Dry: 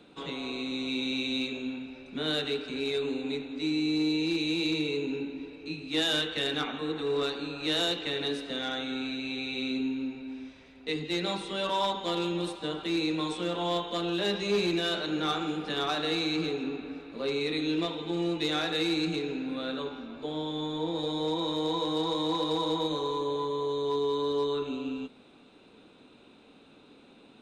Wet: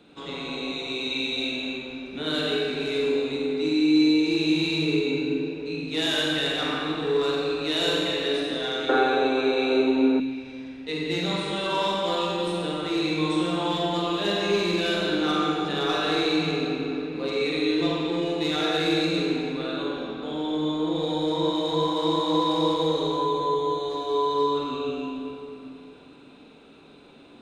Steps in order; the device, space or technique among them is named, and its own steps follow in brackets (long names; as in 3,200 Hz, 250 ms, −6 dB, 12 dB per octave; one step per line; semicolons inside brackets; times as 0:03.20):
tunnel (flutter between parallel walls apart 7.7 metres, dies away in 0.41 s; convolution reverb RT60 2.7 s, pre-delay 45 ms, DRR −2 dB)
0:08.89–0:10.20: flat-topped bell 700 Hz +14 dB 2.6 octaves